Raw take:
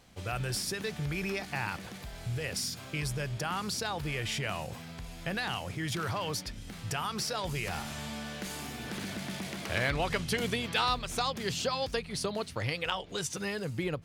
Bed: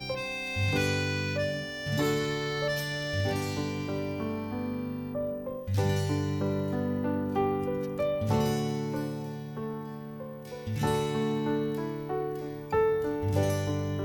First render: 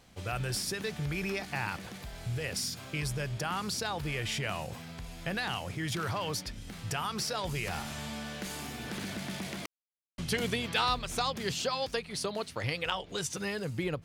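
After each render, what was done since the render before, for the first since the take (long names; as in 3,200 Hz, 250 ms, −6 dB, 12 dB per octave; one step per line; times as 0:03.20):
0:09.66–0:10.18: silence
0:11.52–0:12.64: low-shelf EQ 140 Hz −9 dB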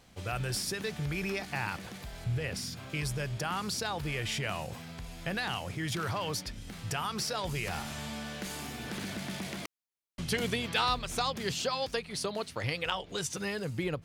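0:02.24–0:02.90: bass and treble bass +3 dB, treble −6 dB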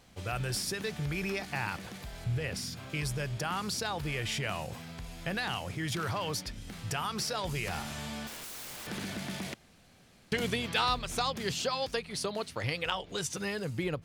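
0:08.27–0:08.87: wrap-around overflow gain 38.5 dB
0:09.54–0:10.32: fill with room tone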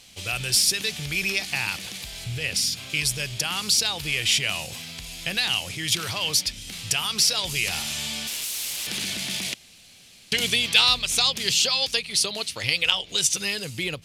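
flat-topped bell 5,500 Hz +15.5 dB 2.9 octaves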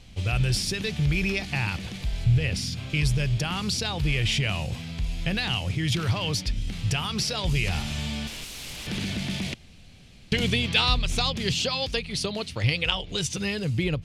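RIAA equalisation playback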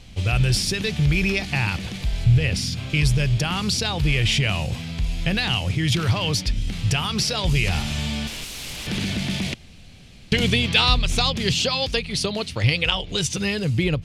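level +4.5 dB
brickwall limiter −3 dBFS, peak gain reduction 1.5 dB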